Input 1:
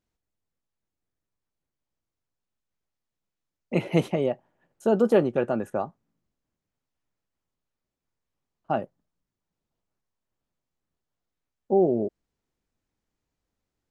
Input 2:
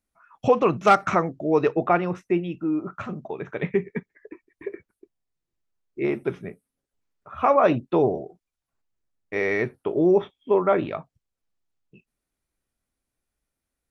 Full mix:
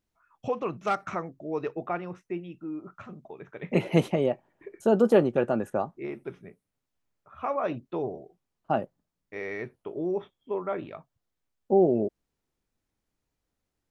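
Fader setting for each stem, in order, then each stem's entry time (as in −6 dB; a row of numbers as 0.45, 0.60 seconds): 0.0, −11.0 decibels; 0.00, 0.00 seconds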